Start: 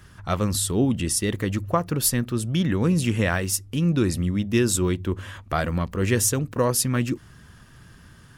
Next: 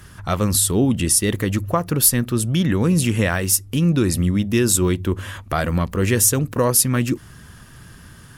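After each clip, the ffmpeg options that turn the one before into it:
-filter_complex "[0:a]asplit=2[a][b];[b]alimiter=limit=-17dB:level=0:latency=1:release=182,volume=3dB[c];[a][c]amix=inputs=2:normalize=0,equalizer=f=12k:w=0.88:g=7,volume=-2dB"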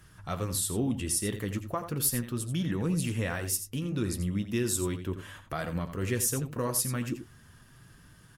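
-filter_complex "[0:a]asplit=2[a][b];[b]aecho=0:1:85:0.299[c];[a][c]amix=inputs=2:normalize=0,flanger=delay=6.1:depth=3.6:regen=-55:speed=0.36:shape=triangular,volume=-8.5dB"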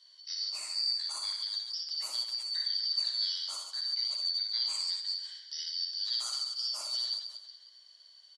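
-af "afftfilt=real='real(if(lt(b,272),68*(eq(floor(b/68),0)*3+eq(floor(b/68),1)*2+eq(floor(b/68),2)*1+eq(floor(b/68),3)*0)+mod(b,68),b),0)':imag='imag(if(lt(b,272),68*(eq(floor(b/68),0)*3+eq(floor(b/68),1)*2+eq(floor(b/68),2)*1+eq(floor(b/68),3)*0)+mod(b,68),b),0)':win_size=2048:overlap=0.75,highpass=f=420:w=0.5412,highpass=f=420:w=1.3066,equalizer=f=430:t=q:w=4:g=-10,equalizer=f=740:t=q:w=4:g=-5,equalizer=f=2.4k:t=q:w=4:g=-4,equalizer=f=4k:t=q:w=4:g=10,lowpass=f=7.7k:w=0.5412,lowpass=f=7.7k:w=1.3066,aecho=1:1:60|138|239.4|371.2|542.6:0.631|0.398|0.251|0.158|0.1,volume=-9dB"

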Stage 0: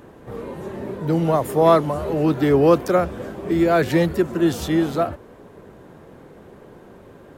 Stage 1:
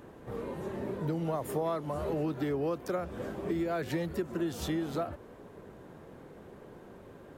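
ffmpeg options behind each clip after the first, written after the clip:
-af "acompressor=threshold=-23dB:ratio=8,volume=-6dB"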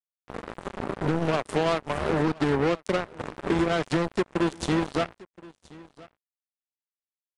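-af "acrusher=bits=4:mix=0:aa=0.5,aecho=1:1:1023:0.0794,aresample=22050,aresample=44100,volume=7dB"

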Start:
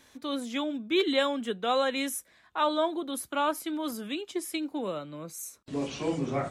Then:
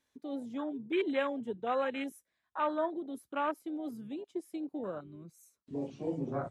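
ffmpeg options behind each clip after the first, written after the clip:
-af "afwtdn=0.0282,volume=-5dB"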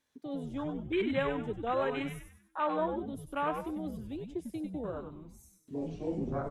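-filter_complex "[0:a]asplit=6[a][b][c][d][e][f];[b]adelay=97,afreqshift=-120,volume=-6dB[g];[c]adelay=194,afreqshift=-240,volume=-14.2dB[h];[d]adelay=291,afreqshift=-360,volume=-22.4dB[i];[e]adelay=388,afreqshift=-480,volume=-30.5dB[j];[f]adelay=485,afreqshift=-600,volume=-38.7dB[k];[a][g][h][i][j][k]amix=inputs=6:normalize=0"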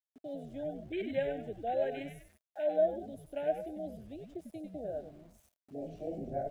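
-af "asuperstop=centerf=1100:order=12:qfactor=1.6,aeval=exprs='val(0)*gte(abs(val(0)),0.00168)':c=same,equalizer=f=640:t=o:w=0.44:g=15,volume=-7.5dB"

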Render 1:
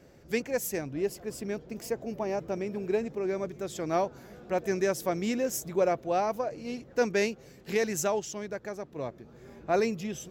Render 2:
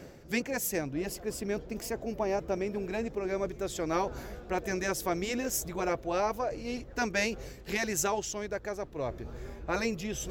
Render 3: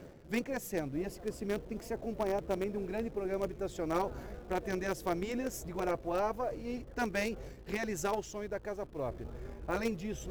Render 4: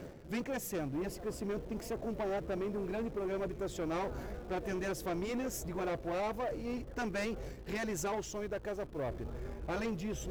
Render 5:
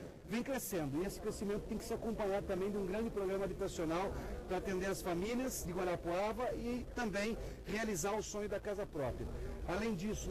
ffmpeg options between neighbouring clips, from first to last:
-af "afftfilt=real='re*lt(hypot(re,im),0.398)':imag='im*lt(hypot(re,im),0.398)':win_size=1024:overlap=0.75,asubboost=boost=10:cutoff=52,areverse,acompressor=mode=upward:threshold=-34dB:ratio=2.5,areverse,volume=2dB"
-filter_complex "[0:a]highshelf=f=2.2k:g=-10.5,asplit=2[a][b];[b]acrusher=bits=5:dc=4:mix=0:aa=0.000001,volume=-10dB[c];[a][c]amix=inputs=2:normalize=0,volume=-3.5dB"
-af "areverse,acompressor=mode=upward:threshold=-43dB:ratio=2.5,areverse,asoftclip=type=tanh:threshold=-34.5dB,volume=3dB"
-filter_complex "[0:a]acrossover=split=730|3500[a][b][c];[a]acrusher=bits=6:mode=log:mix=0:aa=0.000001[d];[d][b][c]amix=inputs=3:normalize=0,volume=-1.5dB" -ar 48000 -c:a libvorbis -b:a 32k

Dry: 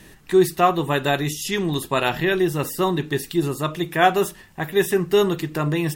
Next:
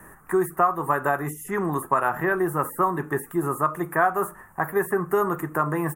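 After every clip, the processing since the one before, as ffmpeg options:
-filter_complex "[0:a]firequalizer=gain_entry='entry(300,0);entry(1200,15);entry(2800,-17);entry(4200,-29);entry(6300,-9);entry(9400,6)':delay=0.05:min_phase=1,acrossover=split=110|2200[a][b][c];[a]acompressor=threshold=-50dB:ratio=4[d];[b]acompressor=threshold=-16dB:ratio=4[e];[c]acompressor=threshold=-35dB:ratio=4[f];[d][e][f]amix=inputs=3:normalize=0,volume=-3dB"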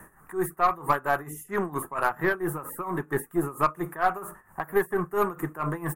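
-af "tremolo=f=4.4:d=0.85,aeval=exprs='0.398*(cos(1*acos(clip(val(0)/0.398,-1,1)))-cos(1*PI/2))+0.0178*(cos(4*acos(clip(val(0)/0.398,-1,1)))-cos(4*PI/2))+0.01*(cos(8*acos(clip(val(0)/0.398,-1,1)))-cos(8*PI/2))':c=same"

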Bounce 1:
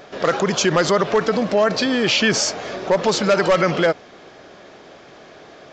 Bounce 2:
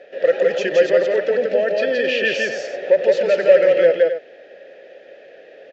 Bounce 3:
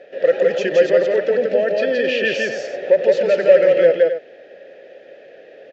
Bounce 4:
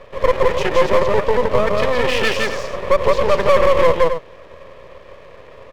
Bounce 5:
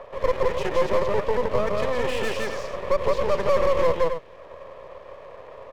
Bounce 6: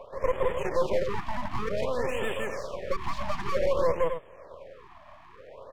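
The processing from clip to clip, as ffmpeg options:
-filter_complex "[0:a]asplit=3[a][b][c];[a]bandpass=f=530:t=q:w=8,volume=0dB[d];[b]bandpass=f=1.84k:t=q:w=8,volume=-6dB[e];[c]bandpass=f=2.48k:t=q:w=8,volume=-9dB[f];[d][e][f]amix=inputs=3:normalize=0,asplit=2[g][h];[h]aecho=0:1:169.1|265.3:0.794|0.282[i];[g][i]amix=inputs=2:normalize=0,volume=7.5dB"
-af "lowshelf=f=370:g=5.5,volume=-1dB"
-af "aeval=exprs='max(val(0),0)':c=same,apsyclip=9dB,volume=-3.5dB"
-filter_complex "[0:a]acrossover=split=620|960[a][b][c];[b]acompressor=mode=upward:threshold=-25dB:ratio=2.5[d];[c]asoftclip=type=tanh:threshold=-22dB[e];[a][d][e]amix=inputs=3:normalize=0,volume=-7dB"
-af "afftfilt=real='re*(1-between(b*sr/1024,410*pow(5200/410,0.5+0.5*sin(2*PI*0.54*pts/sr))/1.41,410*pow(5200/410,0.5+0.5*sin(2*PI*0.54*pts/sr))*1.41))':imag='im*(1-between(b*sr/1024,410*pow(5200/410,0.5+0.5*sin(2*PI*0.54*pts/sr))/1.41,410*pow(5200/410,0.5+0.5*sin(2*PI*0.54*pts/sr))*1.41))':win_size=1024:overlap=0.75,volume=-4dB"

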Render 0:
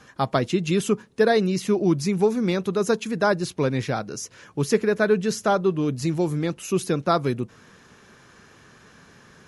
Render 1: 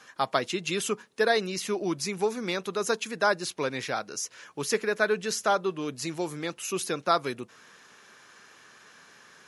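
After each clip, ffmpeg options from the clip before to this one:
-af "highpass=f=960:p=1,volume=1dB"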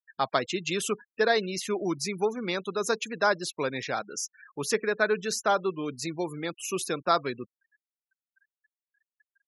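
-af "afftfilt=real='re*gte(hypot(re,im),0.0141)':imag='im*gte(hypot(re,im),0.0141)':win_size=1024:overlap=0.75"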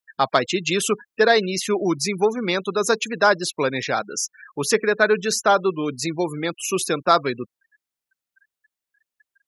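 -af "acontrast=48,volume=2dB"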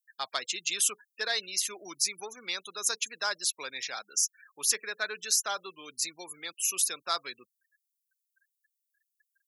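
-af "aderivative"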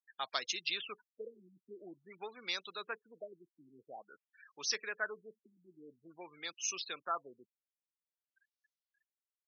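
-af "afftfilt=real='re*lt(b*sr/1024,340*pow(6700/340,0.5+0.5*sin(2*PI*0.49*pts/sr)))':imag='im*lt(b*sr/1024,340*pow(6700/340,0.5+0.5*sin(2*PI*0.49*pts/sr)))':win_size=1024:overlap=0.75,volume=-3.5dB"

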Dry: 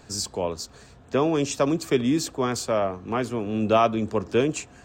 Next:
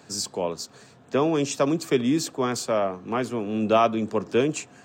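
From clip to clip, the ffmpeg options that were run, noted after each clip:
-af "highpass=f=120:w=0.5412,highpass=f=120:w=1.3066"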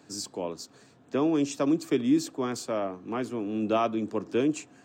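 -af "equalizer=f=300:t=o:w=0.4:g=9.5,volume=-7dB"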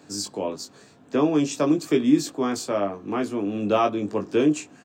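-filter_complex "[0:a]asplit=2[a][b];[b]adelay=20,volume=-5dB[c];[a][c]amix=inputs=2:normalize=0,volume=4dB"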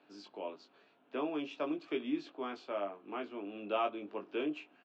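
-af "highpass=470,equalizer=f=490:t=q:w=4:g=-6,equalizer=f=780:t=q:w=4:g=-3,equalizer=f=1.1k:t=q:w=4:g=-4,equalizer=f=1.8k:t=q:w=4:g=-7,equalizer=f=2.9k:t=q:w=4:g=3,lowpass=f=3.1k:w=0.5412,lowpass=f=3.1k:w=1.3066,volume=-8dB"

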